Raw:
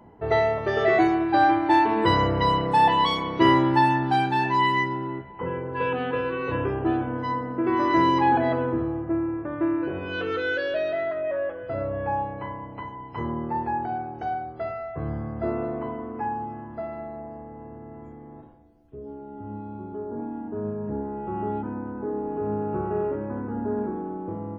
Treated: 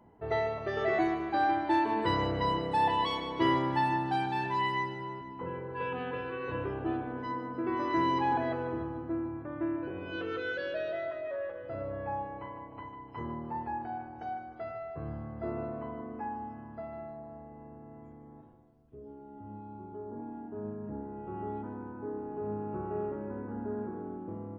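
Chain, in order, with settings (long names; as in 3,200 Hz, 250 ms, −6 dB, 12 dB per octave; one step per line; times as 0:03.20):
echo with a time of its own for lows and highs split 340 Hz, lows 514 ms, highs 151 ms, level −11 dB
level −9 dB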